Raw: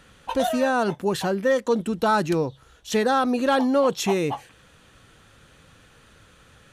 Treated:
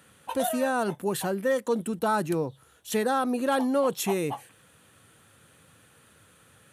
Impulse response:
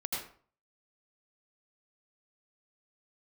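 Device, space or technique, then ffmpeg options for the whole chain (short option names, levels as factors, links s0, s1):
budget condenser microphone: -filter_complex "[0:a]highpass=f=84:w=0.5412,highpass=f=84:w=1.3066,highshelf=f=7600:t=q:w=1.5:g=9,asettb=1/sr,asplit=3[s0][s1][s2];[s0]atrim=end=1.994[s3];[s1]atrim=start=1.99:end=3.52,asetpts=PTS-STARTPTS,afade=t=in:d=0.004:c=qsin,afade=t=out:st=1.526:d=0.004:c=qsin,adynamicequalizer=threshold=0.0251:dfrequency=1600:dqfactor=0.7:tfrequency=1600:tqfactor=0.7:attack=5:release=100:ratio=0.375:range=2:mode=cutabove:tftype=highshelf[s4];[s2]atrim=start=3.516[s5];[s3][s4]acrossfade=d=0.004:c1=hsin:c2=qsin[s6];[s6][s5]acrossfade=d=0.004:c1=qsin:c2=hsin,volume=0.596"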